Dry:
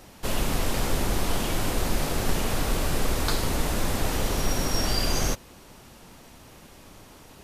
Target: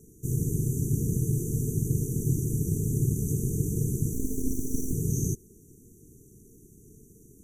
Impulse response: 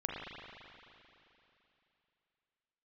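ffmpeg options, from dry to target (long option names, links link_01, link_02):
-filter_complex "[0:a]aeval=exprs='val(0)*sin(2*PI*130*n/s)':channel_layout=same,asettb=1/sr,asplit=3[link_01][link_02][link_03];[link_01]atrim=end=4.134[link_04];[link_02]atrim=start=4.13:end=4.93,asetpts=PTS-STARTPTS,afade=type=in:duration=0.004:curve=qsin,afade=type=out:start_time=0.796:duration=0.004:curve=qsin,aeval=exprs='abs(val(0))':channel_layout=same[link_05];[link_03]atrim=start=4.926[link_06];[link_04][link_05]acrossfade=duration=0.004:curve1=hsin:curve2=qsin[link_07];[link_07][link_06]acrossfade=duration=0.004:curve1=qsin:curve2=hsin,afftfilt=real='re*(1-between(b*sr/4096,470,5800))':imag='im*(1-between(b*sr/4096,470,5800))':win_size=4096:overlap=0.75"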